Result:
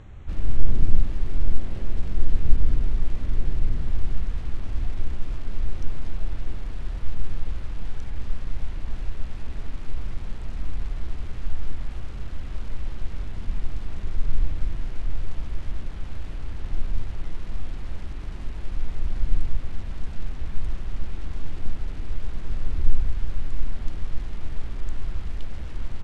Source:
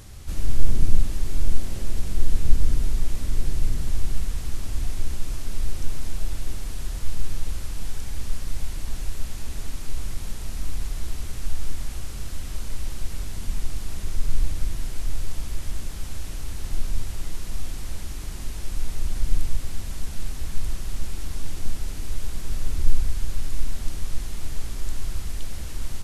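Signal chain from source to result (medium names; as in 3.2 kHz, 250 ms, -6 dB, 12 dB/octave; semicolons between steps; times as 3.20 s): local Wiener filter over 9 samples; distance through air 91 m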